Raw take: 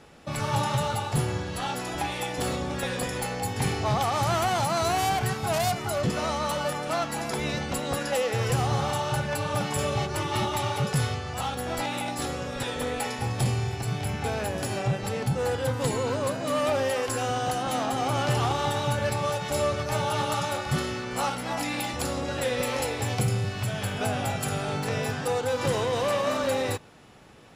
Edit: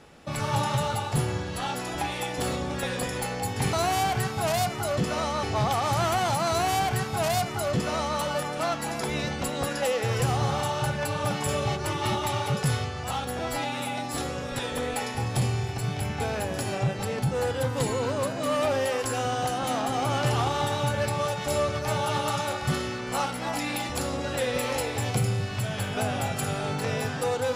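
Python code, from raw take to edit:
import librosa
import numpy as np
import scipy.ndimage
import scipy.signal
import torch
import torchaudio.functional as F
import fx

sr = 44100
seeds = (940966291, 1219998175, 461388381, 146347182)

y = fx.edit(x, sr, fx.duplicate(start_s=4.79, length_s=1.7, to_s=3.73),
    fx.stretch_span(start_s=11.69, length_s=0.52, factor=1.5), tone=tone)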